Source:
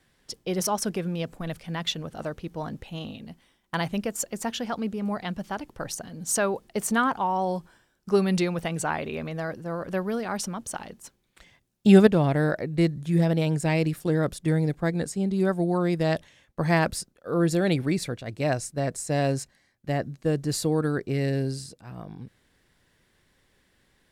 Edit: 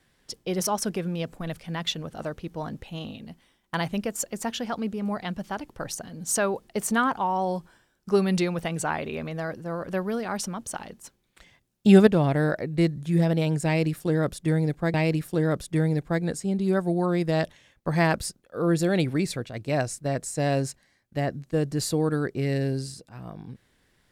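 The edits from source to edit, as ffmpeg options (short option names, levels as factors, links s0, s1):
-filter_complex "[0:a]asplit=2[s0][s1];[s0]atrim=end=14.942[s2];[s1]atrim=start=13.658[s3];[s2][s3]acrossfade=d=0.004:c1=hsin:c2=hsin"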